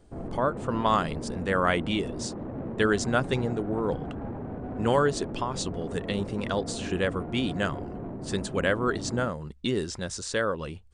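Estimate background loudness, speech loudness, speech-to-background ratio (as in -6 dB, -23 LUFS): -37.0 LUFS, -29.0 LUFS, 8.0 dB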